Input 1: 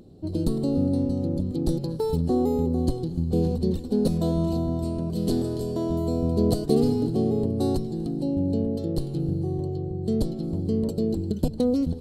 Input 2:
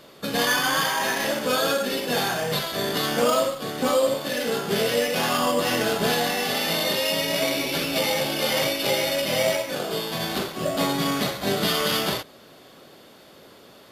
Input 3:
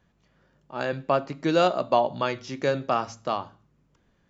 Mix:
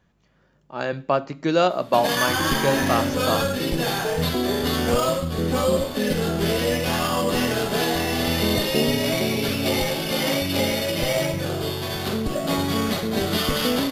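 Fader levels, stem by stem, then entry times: -2.0, -1.0, +2.0 dB; 2.05, 1.70, 0.00 s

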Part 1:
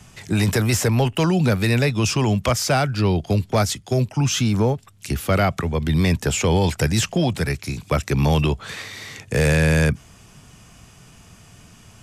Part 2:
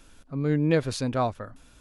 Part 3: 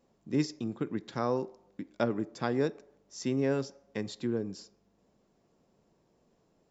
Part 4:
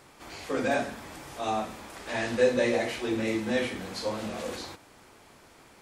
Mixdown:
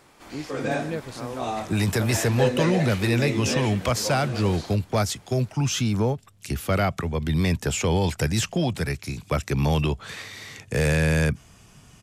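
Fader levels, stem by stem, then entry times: -4.0, -8.5, -6.0, -0.5 dB; 1.40, 0.20, 0.00, 0.00 s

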